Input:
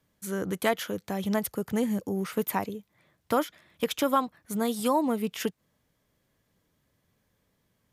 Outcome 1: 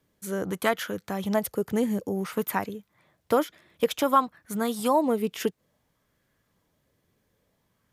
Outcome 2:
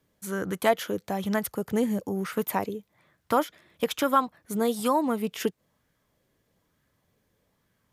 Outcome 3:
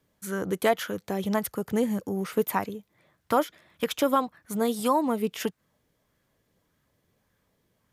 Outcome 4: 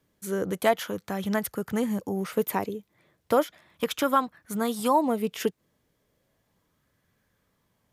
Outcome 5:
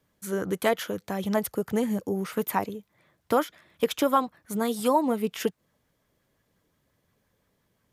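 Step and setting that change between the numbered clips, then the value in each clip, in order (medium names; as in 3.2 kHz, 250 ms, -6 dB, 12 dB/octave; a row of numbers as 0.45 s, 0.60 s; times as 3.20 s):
sweeping bell, rate: 0.56 Hz, 1.1 Hz, 1.7 Hz, 0.35 Hz, 5.7 Hz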